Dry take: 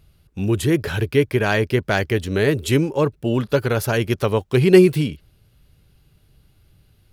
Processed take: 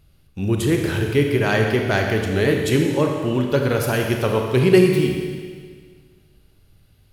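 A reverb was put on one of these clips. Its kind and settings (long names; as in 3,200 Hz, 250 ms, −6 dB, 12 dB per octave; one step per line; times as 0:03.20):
four-comb reverb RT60 1.8 s, combs from 28 ms, DRR 2 dB
level −1.5 dB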